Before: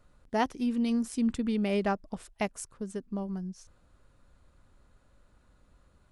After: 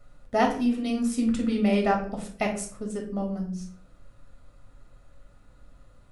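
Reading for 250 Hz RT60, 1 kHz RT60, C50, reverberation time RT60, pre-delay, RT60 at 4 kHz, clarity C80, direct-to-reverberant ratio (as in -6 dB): 0.65 s, 0.40 s, 7.5 dB, 0.50 s, 4 ms, 0.35 s, 11.5 dB, 0.0 dB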